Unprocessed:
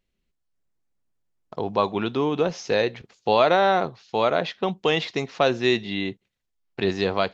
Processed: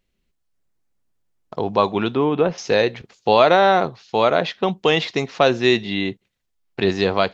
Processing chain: 2.14–2.58 s: low-pass 2.7 kHz 12 dB/octave; trim +4.5 dB

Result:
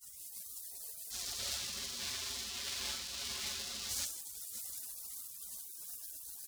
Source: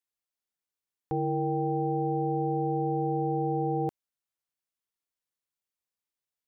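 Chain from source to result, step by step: one-bit delta coder 16 kbps, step -30 dBFS; in parallel at -11 dB: hard clipper -29 dBFS, distortion -10 dB; on the sum: two-band feedback delay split 450 Hz, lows 500 ms, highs 162 ms, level -7 dB; spectral selection erased 0.70–1.37 s, 380–780 Hz; peak limiter -21.5 dBFS, peak gain reduction 5 dB; waveshaping leveller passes 5; bass shelf 220 Hz -11 dB; waveshaping leveller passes 1; high-pass 57 Hz 24 dB/octave; on a send: delay 466 ms -10 dB; on the sum: spectral gate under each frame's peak -25 dB weak; expander -34 dBFS; trim +3.5 dB

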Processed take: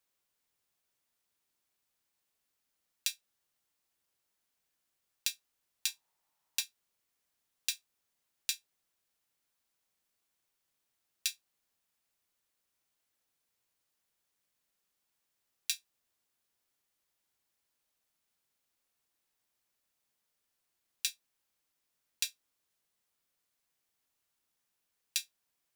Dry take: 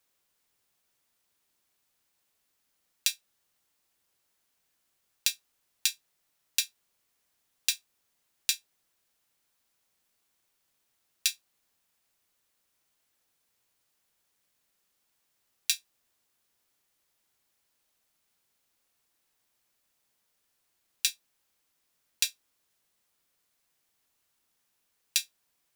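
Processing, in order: 5.87–6.63 s: peaking EQ 900 Hz +12.5 dB 0.6 oct; trim -6.5 dB

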